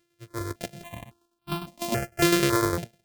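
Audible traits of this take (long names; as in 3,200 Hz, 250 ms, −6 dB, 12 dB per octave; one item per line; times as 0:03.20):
a buzz of ramps at a fixed pitch in blocks of 128 samples
tremolo saw down 9.9 Hz, depth 60%
notches that jump at a steady rate 3.6 Hz 220–1,900 Hz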